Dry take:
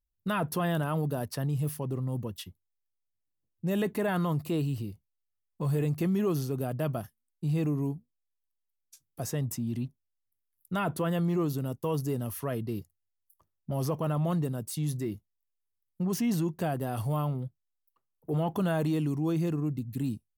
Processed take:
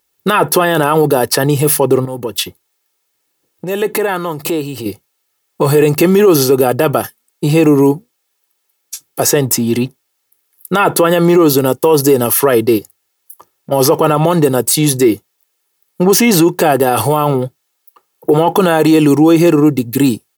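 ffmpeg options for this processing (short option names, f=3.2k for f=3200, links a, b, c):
-filter_complex "[0:a]asettb=1/sr,asplit=3[a][b][c];[a]atrim=end=2.054[d];[b]atrim=start=2.05:end=4.86,asetpts=PTS-STARTPTS,afade=t=in:d=0.004:c=qsin,afade=t=out:st=2.806:d=0.004:c=qsin,acompressor=threshold=-39dB:ratio=6:attack=3.2:release=140:knee=1:detection=peak[e];[c]atrim=start=4.856[f];[d][e]acrossfade=d=0.004:c1=hsin:c2=qsin[g];[g][f]acrossfade=d=0.004:c1=qsin:c2=hsin,asplit=3[h][i][j];[h]afade=t=out:st=12.77:d=0.02[k];[i]acompressor=threshold=-41dB:ratio=6:attack=3.2:release=140:knee=1:detection=peak,afade=t=in:st=12.77:d=0.02,afade=t=out:st=13.71:d=0.02[l];[j]afade=t=in:st=13.71:d=0.02[m];[k][l][m]amix=inputs=3:normalize=0,highpass=290,aecho=1:1:2.3:0.43,alimiter=level_in=28.5dB:limit=-1dB:release=50:level=0:latency=1,volume=-1dB"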